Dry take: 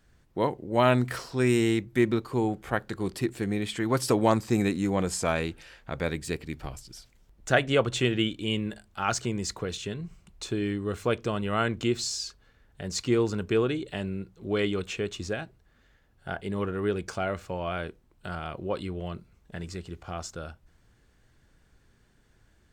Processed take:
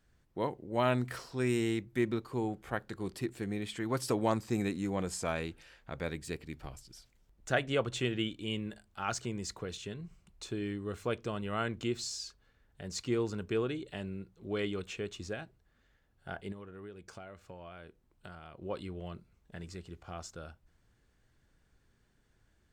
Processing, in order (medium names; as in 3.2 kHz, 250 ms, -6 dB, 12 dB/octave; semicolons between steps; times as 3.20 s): 16.52–18.62 s: compression 6:1, threshold -38 dBFS, peak gain reduction 14.5 dB; trim -7.5 dB